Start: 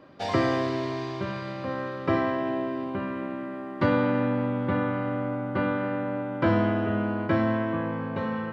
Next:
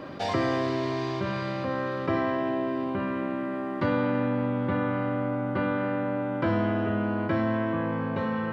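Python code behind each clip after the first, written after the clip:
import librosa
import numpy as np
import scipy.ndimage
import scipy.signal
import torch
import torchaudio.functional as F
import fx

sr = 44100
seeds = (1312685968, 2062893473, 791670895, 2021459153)

y = fx.env_flatten(x, sr, amount_pct=50)
y = y * 10.0 ** (-4.0 / 20.0)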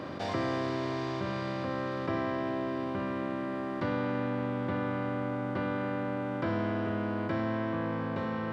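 y = fx.bin_compress(x, sr, power=0.6)
y = y * 10.0 ** (-7.5 / 20.0)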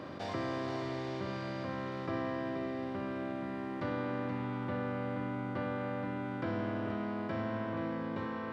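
y = x + 10.0 ** (-7.5 / 20.0) * np.pad(x, (int(477 * sr / 1000.0), 0))[:len(x)]
y = y * 10.0 ** (-5.0 / 20.0)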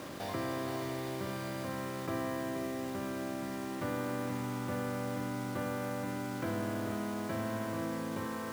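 y = fx.quant_dither(x, sr, seeds[0], bits=8, dither='none')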